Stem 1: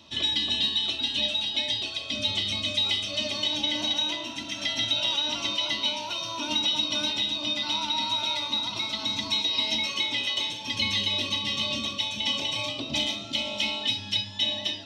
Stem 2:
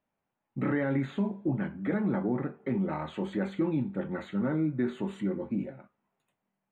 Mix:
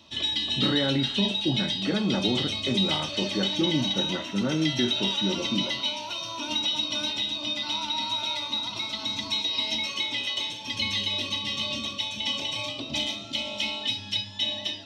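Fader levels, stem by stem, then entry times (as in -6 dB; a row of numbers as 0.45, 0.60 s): -1.5, +2.5 dB; 0.00, 0.00 s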